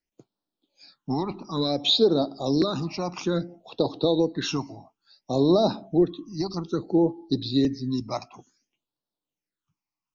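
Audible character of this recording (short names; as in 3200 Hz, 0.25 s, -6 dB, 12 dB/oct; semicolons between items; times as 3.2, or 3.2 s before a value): phasing stages 8, 0.58 Hz, lowest notch 460–2200 Hz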